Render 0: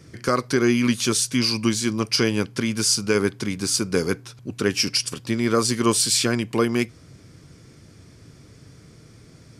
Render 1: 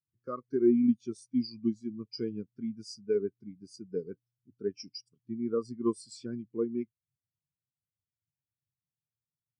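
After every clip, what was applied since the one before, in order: spectral expander 2.5:1; gain -7 dB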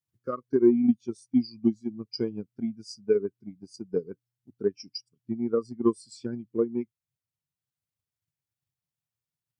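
transient shaper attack +6 dB, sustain -2 dB; gain +1.5 dB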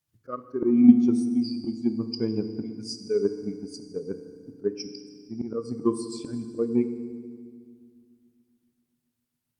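auto swell 0.17 s; FDN reverb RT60 1.9 s, low-frequency decay 1.5×, high-frequency decay 1×, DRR 8 dB; gain +7.5 dB; Opus 48 kbps 48000 Hz

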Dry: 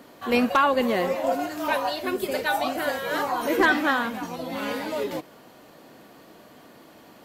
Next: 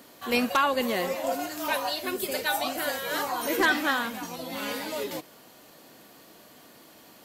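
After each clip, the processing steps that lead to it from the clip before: high shelf 3100 Hz +11.5 dB; gain -5 dB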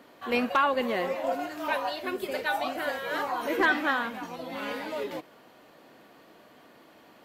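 tone controls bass -4 dB, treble -15 dB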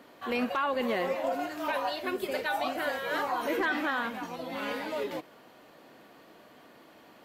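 limiter -20.5 dBFS, peak gain reduction 8 dB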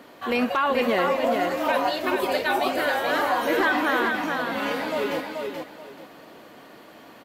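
feedback echo 0.431 s, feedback 24%, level -4.5 dB; gain +6.5 dB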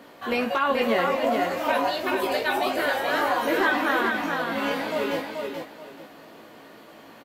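doubler 18 ms -5 dB; gain -1.5 dB

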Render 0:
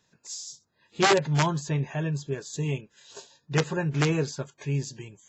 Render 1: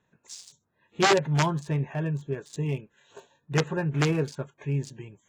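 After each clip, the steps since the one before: Wiener smoothing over 9 samples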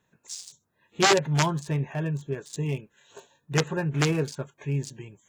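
high shelf 4500 Hz +7.5 dB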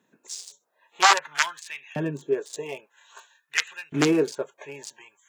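LFO high-pass saw up 0.51 Hz 230–3200 Hz; gain +1.5 dB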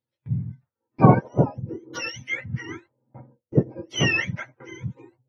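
spectrum mirrored in octaves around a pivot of 930 Hz; gate with hold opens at -41 dBFS; gain +1 dB

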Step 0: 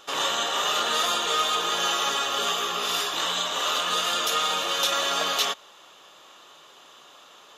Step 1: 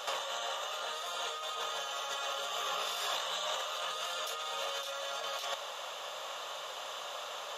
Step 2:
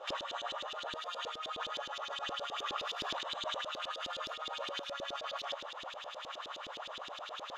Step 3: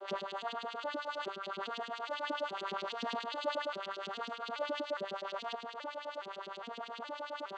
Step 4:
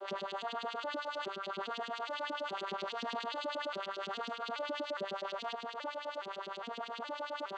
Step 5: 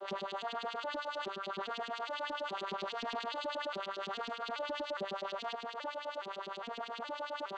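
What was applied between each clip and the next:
resonant low shelf 430 Hz -8 dB, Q 3; negative-ratio compressor -35 dBFS, ratio -1; gain -2.5 dB
LFO band-pass saw up 9.6 Hz 320–4600 Hz; gain +4.5 dB
arpeggiated vocoder minor triad, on G3, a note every 0.414 s; gain +2 dB
limiter -32.5 dBFS, peak gain reduction 8.5 dB; gain +2 dB
Doppler distortion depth 0.33 ms

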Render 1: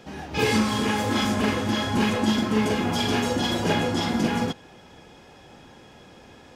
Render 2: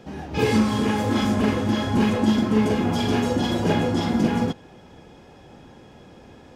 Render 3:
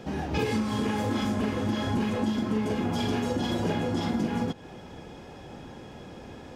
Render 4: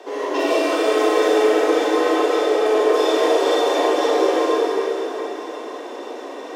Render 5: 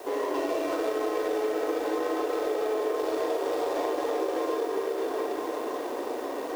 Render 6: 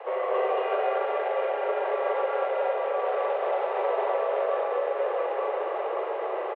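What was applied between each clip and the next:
tilt shelf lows +4 dB, about 850 Hz
compressor 6:1, threshold -28 dBFS, peak gain reduction 13 dB; gain +3 dB
frequency shift +220 Hz; reverb RT60 4.3 s, pre-delay 23 ms, DRR -7.5 dB; gain +2.5 dB
median filter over 15 samples; compressor, threshold -26 dBFS, peak gain reduction 13 dB; added noise white -54 dBFS
on a send: echo 0.226 s -3 dB; on the sum: mistuned SSB +100 Hz 220–2800 Hz; gain +1 dB

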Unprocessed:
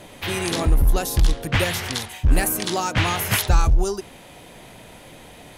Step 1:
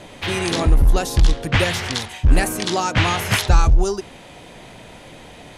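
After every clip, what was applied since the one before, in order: LPF 7900 Hz 12 dB/oct; gain +3 dB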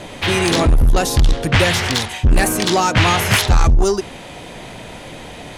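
soft clip -14.5 dBFS, distortion -10 dB; gain +7 dB

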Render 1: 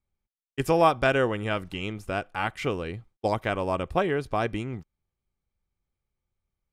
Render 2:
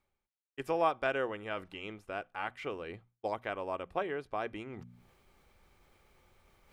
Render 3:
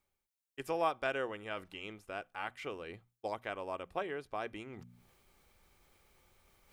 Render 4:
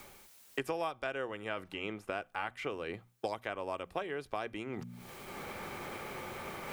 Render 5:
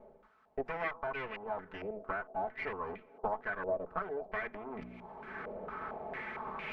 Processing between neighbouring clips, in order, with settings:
tone controls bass -11 dB, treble -9 dB; notches 60/120/180/240 Hz; reverse; upward compressor, threshold -29 dBFS; reverse; gain -8.5 dB
high shelf 4400 Hz +9 dB; gain -3.5 dB
three-band squash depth 100%; gain +1.5 dB
minimum comb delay 4.6 ms; band-limited delay 0.245 s, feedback 77%, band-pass 440 Hz, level -18 dB; stepped low-pass 4.4 Hz 590–2400 Hz; gain -1.5 dB

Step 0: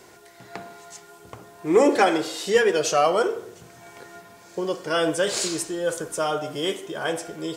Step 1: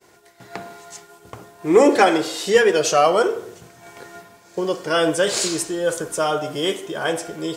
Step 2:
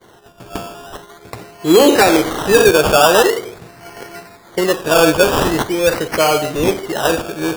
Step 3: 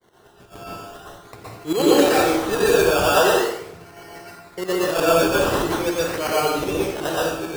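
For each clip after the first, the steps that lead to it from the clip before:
expander -43 dBFS; gain +4 dB
decimation with a swept rate 17×, swing 60% 0.44 Hz; maximiser +8 dB; gain -1 dB
tremolo saw up 11 Hz, depth 75%; plate-style reverb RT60 0.7 s, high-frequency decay 0.85×, pre-delay 0.105 s, DRR -6.5 dB; gain -9.5 dB

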